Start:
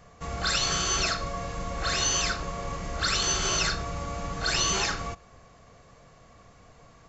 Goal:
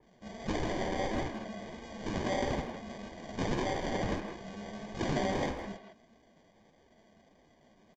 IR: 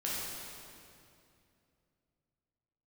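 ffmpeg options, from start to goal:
-filter_complex "[0:a]highpass=f=630:w=0.5412,highpass=f=630:w=1.3066,equalizer=f=2.4k:w=1:g=2.5,acrusher=samples=33:mix=1:aa=0.000001,flanger=delay=2.3:depth=8.2:regen=-33:speed=1.8:shape=sinusoidal,atempo=0.89,aresample=16000,aresample=44100,asplit=2[a][b];[b]adelay=160,highpass=300,lowpass=3.4k,asoftclip=type=hard:threshold=-27dB,volume=-6dB[c];[a][c]amix=inputs=2:normalize=0,adynamicequalizer=threshold=0.00447:dfrequency=3100:dqfactor=0.7:tfrequency=3100:tqfactor=0.7:attack=5:release=100:ratio=0.375:range=2.5:mode=cutabove:tftype=highshelf,volume=-2.5dB"

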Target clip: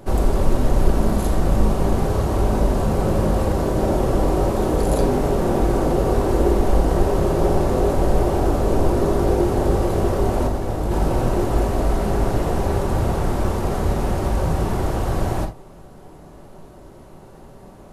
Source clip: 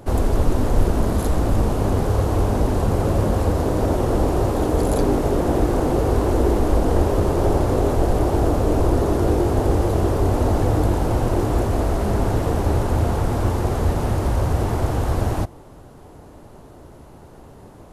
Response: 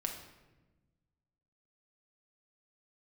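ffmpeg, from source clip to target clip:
-filter_complex "[0:a]asplit=3[a][b][c];[a]afade=t=out:st=10.46:d=0.02[d];[b]agate=range=-33dB:threshold=-12dB:ratio=3:detection=peak,afade=t=in:st=10.46:d=0.02,afade=t=out:st=10.9:d=0.02[e];[c]afade=t=in:st=10.9:d=0.02[f];[d][e][f]amix=inputs=3:normalize=0[g];[1:a]atrim=start_sample=2205,atrim=end_sample=3528[h];[g][h]afir=irnorm=-1:irlink=0"

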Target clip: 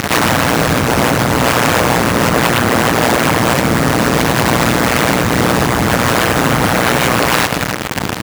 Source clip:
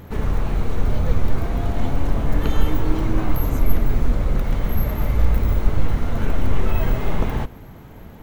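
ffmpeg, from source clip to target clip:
-filter_complex "[0:a]lowpass=f=1.7k:t=q:w=2,acrusher=bits=5:mix=0:aa=0.000001,acompressor=threshold=-22dB:ratio=3,aeval=exprs='0.0251*(abs(mod(val(0)/0.0251+3,4)-2)-1)':c=same,asplit=2[a][b];[b]aecho=0:1:154:0.299[c];[a][c]amix=inputs=2:normalize=0,tremolo=f=120:d=0.974,highpass=96,bandreject=f=380:w=12,alimiter=level_in=31.5dB:limit=-1dB:release=50:level=0:latency=1,volume=-1dB"

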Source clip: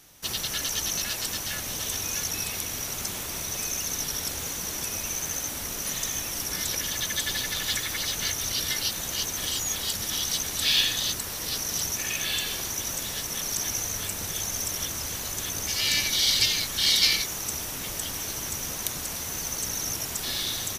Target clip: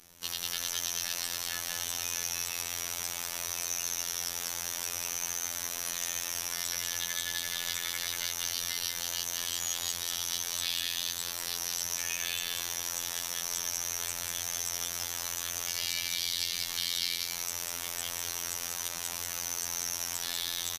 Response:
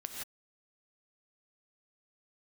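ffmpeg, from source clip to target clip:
-filter_complex "[0:a]acrossover=split=120|540|7400[a][b][c][d];[a]acompressor=threshold=-56dB:ratio=4[e];[b]acompressor=threshold=-57dB:ratio=4[f];[c]acompressor=threshold=-31dB:ratio=4[g];[d]acompressor=threshold=-36dB:ratio=4[h];[e][f][g][h]amix=inputs=4:normalize=0,aecho=1:1:193:0.631,afftfilt=real='hypot(re,im)*cos(PI*b)':imag='0':win_size=2048:overlap=0.75"

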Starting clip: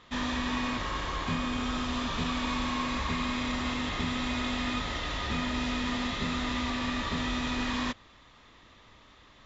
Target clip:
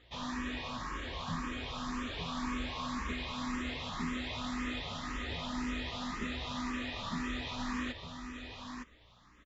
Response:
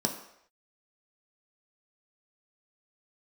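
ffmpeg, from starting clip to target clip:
-filter_complex "[0:a]aecho=1:1:912:0.473,aeval=exprs='val(0)+0.00141*(sin(2*PI*60*n/s)+sin(2*PI*2*60*n/s)/2+sin(2*PI*3*60*n/s)/3+sin(2*PI*4*60*n/s)/4+sin(2*PI*5*60*n/s)/5)':c=same,asplit=2[a][b];[b]afreqshift=1.9[c];[a][c]amix=inputs=2:normalize=1,volume=-4.5dB"

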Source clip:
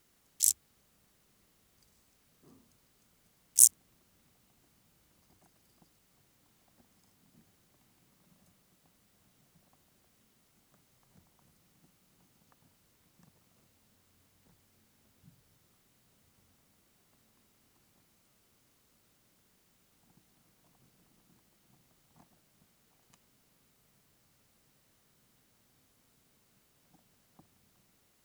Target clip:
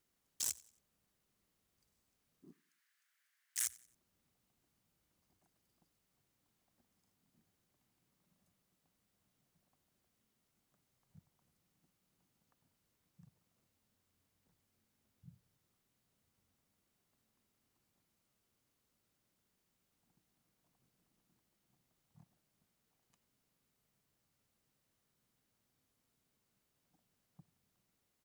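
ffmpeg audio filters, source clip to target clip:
-filter_complex "[0:a]afwtdn=0.00398,asplit=2[a][b];[b]acompressor=threshold=-33dB:ratio=6,volume=2dB[c];[a][c]amix=inputs=2:normalize=0,alimiter=limit=-11dB:level=0:latency=1:release=27,volume=29dB,asoftclip=hard,volume=-29dB,asplit=3[d][e][f];[d]afade=t=out:st=2.51:d=0.02[g];[e]highpass=f=1.7k:t=q:w=4.3,afade=t=in:st=2.51:d=0.02,afade=t=out:st=3.65:d=0.02[h];[f]afade=t=in:st=3.65:d=0.02[i];[g][h][i]amix=inputs=3:normalize=0,asplit=2[j][k];[k]aecho=0:1:91|182|273:0.075|0.0285|0.0108[l];[j][l]amix=inputs=2:normalize=0,volume=-3dB"

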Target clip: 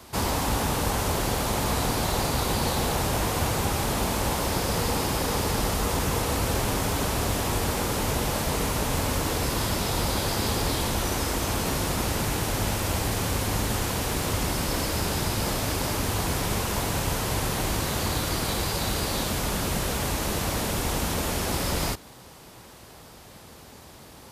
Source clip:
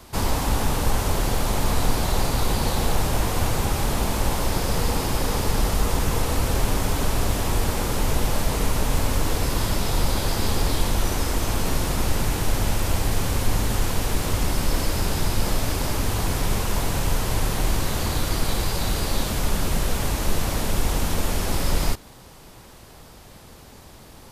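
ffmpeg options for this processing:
-af "highpass=53,lowshelf=f=170:g=-3"

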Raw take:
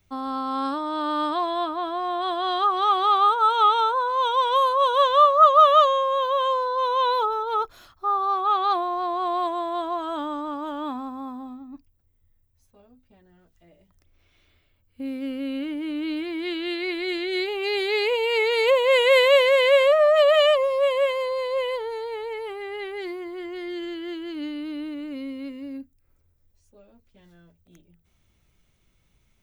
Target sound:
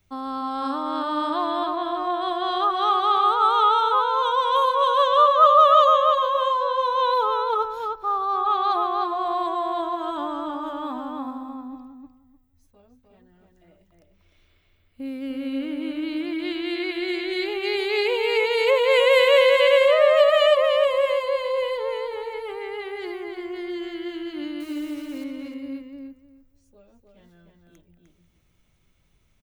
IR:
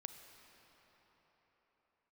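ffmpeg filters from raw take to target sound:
-filter_complex "[0:a]asettb=1/sr,asplit=3[a][b][c];[a]atrim=end=24.604[d];[b]atrim=start=24.6:end=25.24,asetpts=PTS-STARTPTS,afade=t=in:d=0.004:c=qsin,afade=t=out:st=0.636:d=0.004:c=qsin,acrusher=bits=4:mode=log:mix=0:aa=0.000001[e];[c]atrim=start=25.236[f];[d][e]acrossfade=d=0.004:c1=hsin:c2=qsin[g];[g][f]acrossfade=d=0.004:c1=qsin:c2=hsin,asplit=2[h][i];[i]adelay=303,lowpass=f=3.3k:p=1,volume=-3dB,asplit=2[j][k];[k]adelay=303,lowpass=f=3.3k:p=1,volume=0.19,asplit=2[l][m];[m]adelay=303,lowpass=f=3.3k:p=1,volume=0.19[n];[j][l][n]amix=inputs=3:normalize=0[o];[h][o]amix=inputs=2:normalize=0,volume=-1dB"

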